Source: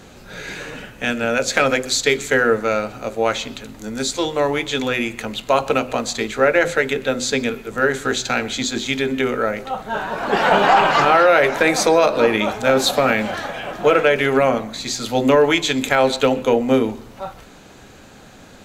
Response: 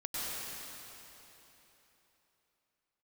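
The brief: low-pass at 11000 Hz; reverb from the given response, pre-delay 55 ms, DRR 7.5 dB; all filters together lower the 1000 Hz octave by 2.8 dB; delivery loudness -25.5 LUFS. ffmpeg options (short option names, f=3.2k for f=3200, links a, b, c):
-filter_complex "[0:a]lowpass=11k,equalizer=f=1k:t=o:g=-4,asplit=2[a][b];[1:a]atrim=start_sample=2205,adelay=55[c];[b][c]afir=irnorm=-1:irlink=0,volume=-12.5dB[d];[a][d]amix=inputs=2:normalize=0,volume=-6.5dB"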